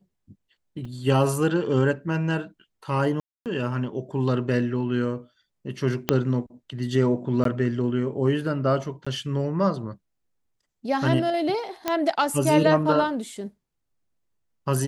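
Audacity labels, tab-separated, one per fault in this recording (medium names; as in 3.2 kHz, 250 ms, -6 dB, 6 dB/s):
0.850000	0.850000	dropout 3.9 ms
3.200000	3.460000	dropout 258 ms
6.090000	6.090000	pop -4 dBFS
7.440000	7.450000	dropout 13 ms
9.050000	9.060000	dropout 15 ms
11.880000	11.880000	pop -9 dBFS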